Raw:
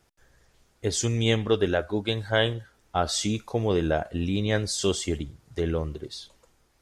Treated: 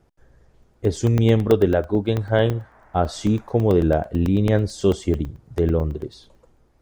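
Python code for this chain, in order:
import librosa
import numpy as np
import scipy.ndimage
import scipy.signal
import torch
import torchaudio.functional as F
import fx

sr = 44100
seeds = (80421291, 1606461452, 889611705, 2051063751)

y = fx.dmg_noise_band(x, sr, seeds[0], low_hz=600.0, high_hz=1900.0, level_db=-55.0, at=(2.14, 3.57), fade=0.02)
y = fx.tilt_shelf(y, sr, db=8.5, hz=1300.0)
y = fx.buffer_crackle(y, sr, first_s=0.63, period_s=0.11, block=64, kind='zero')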